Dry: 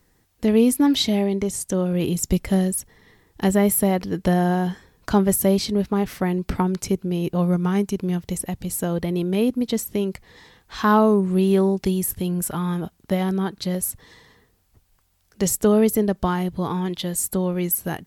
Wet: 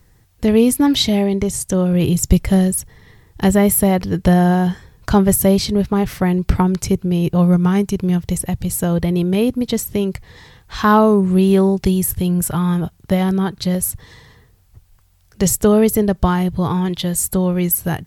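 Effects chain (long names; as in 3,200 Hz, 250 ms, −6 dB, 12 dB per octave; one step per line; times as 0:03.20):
low shelf with overshoot 170 Hz +7 dB, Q 1.5
level +5 dB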